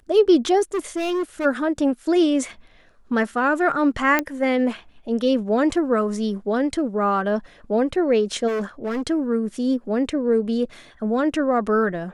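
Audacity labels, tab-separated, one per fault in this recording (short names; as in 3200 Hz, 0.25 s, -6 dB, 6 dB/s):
0.740000	1.460000	clipped -20.5 dBFS
4.190000	4.190000	pop -6 dBFS
8.470000	9.020000	clipped -22 dBFS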